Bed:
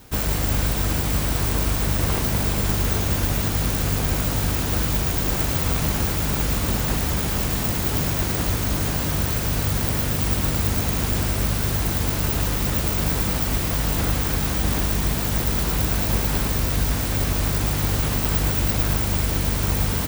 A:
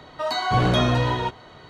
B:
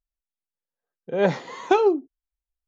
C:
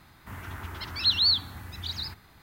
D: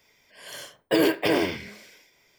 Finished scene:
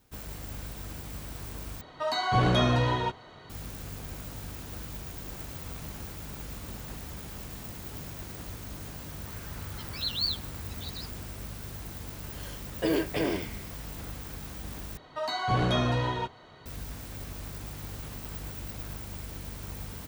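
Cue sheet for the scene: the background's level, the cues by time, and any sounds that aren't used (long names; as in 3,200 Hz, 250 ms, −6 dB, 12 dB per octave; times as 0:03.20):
bed −18 dB
0:01.81: overwrite with A −4 dB
0:08.97: mix in C −5 dB + string-ensemble chorus
0:11.91: mix in D −9 dB + low-shelf EQ 250 Hz +9 dB
0:14.97: overwrite with A −6.5 dB
not used: B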